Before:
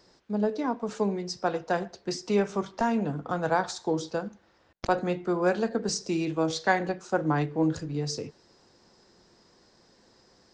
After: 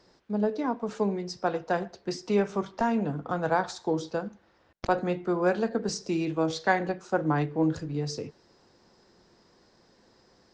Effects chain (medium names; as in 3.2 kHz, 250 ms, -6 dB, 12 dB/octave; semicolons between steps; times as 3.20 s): treble shelf 6.2 kHz -8.5 dB